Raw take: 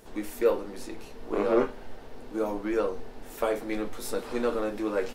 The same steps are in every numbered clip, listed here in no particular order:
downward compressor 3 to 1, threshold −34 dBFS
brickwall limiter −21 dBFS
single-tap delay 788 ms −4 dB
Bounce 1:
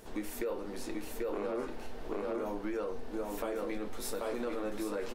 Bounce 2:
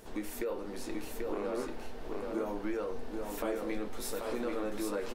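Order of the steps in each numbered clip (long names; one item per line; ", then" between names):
single-tap delay, then brickwall limiter, then downward compressor
brickwall limiter, then downward compressor, then single-tap delay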